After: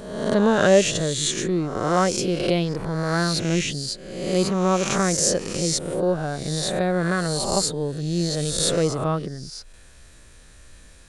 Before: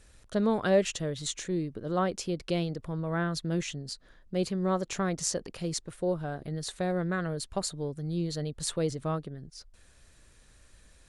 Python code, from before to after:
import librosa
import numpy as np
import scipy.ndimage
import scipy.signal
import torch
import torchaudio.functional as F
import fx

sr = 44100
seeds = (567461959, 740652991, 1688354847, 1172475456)

y = fx.spec_swells(x, sr, rise_s=1.0)
y = y * librosa.db_to_amplitude(7.0)